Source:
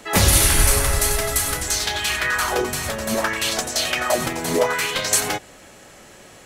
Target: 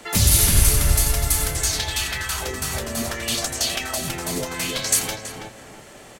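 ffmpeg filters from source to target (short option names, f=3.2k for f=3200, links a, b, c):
-filter_complex "[0:a]acrossover=split=220|3000[a][b][c];[b]acompressor=threshold=-31dB:ratio=6[d];[a][d][c]amix=inputs=3:normalize=0,asplit=2[e][f];[f]adelay=340,lowpass=f=1.6k:p=1,volume=-4dB,asplit=2[g][h];[h]adelay=340,lowpass=f=1.6k:p=1,volume=0.37,asplit=2[i][j];[j]adelay=340,lowpass=f=1.6k:p=1,volume=0.37,asplit=2[k][l];[l]adelay=340,lowpass=f=1.6k:p=1,volume=0.37,asplit=2[m][n];[n]adelay=340,lowpass=f=1.6k:p=1,volume=0.37[o];[g][i][k][m][o]amix=inputs=5:normalize=0[p];[e][p]amix=inputs=2:normalize=0,asetrate=45938,aresample=44100"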